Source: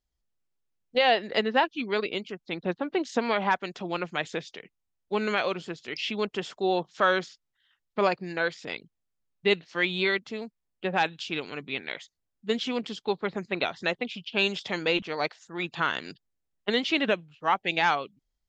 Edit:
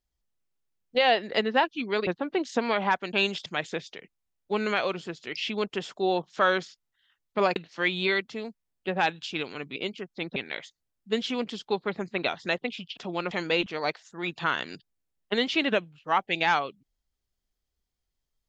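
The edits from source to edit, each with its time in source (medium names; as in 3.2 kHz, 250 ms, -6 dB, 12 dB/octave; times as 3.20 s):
2.07–2.67 s: move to 11.73 s
3.73–4.07 s: swap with 14.34–14.67 s
8.17–9.53 s: delete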